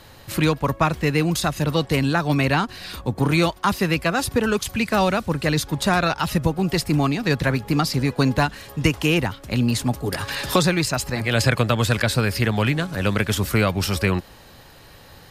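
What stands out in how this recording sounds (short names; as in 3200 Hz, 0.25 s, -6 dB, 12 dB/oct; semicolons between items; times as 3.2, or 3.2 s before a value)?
noise floor -46 dBFS; spectral tilt -5.0 dB/oct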